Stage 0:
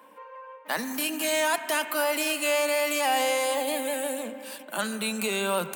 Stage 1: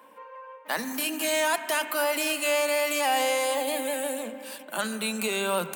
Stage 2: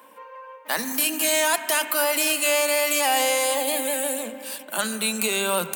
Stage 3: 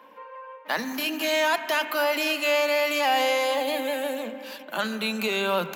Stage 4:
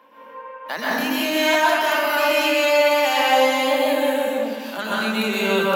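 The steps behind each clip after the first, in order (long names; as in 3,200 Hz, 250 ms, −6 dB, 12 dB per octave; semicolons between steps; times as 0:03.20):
mains-hum notches 50/100/150/200/250/300 Hz
high-shelf EQ 4,000 Hz +7.5 dB; level +2 dB
moving average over 5 samples
dense smooth reverb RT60 1.4 s, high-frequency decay 0.5×, pre-delay 110 ms, DRR −7.5 dB; level −2 dB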